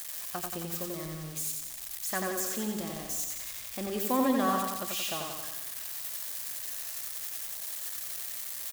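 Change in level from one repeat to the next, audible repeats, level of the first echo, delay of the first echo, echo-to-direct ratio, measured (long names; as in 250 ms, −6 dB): −4.5 dB, 6, −3.5 dB, 89 ms, −1.5 dB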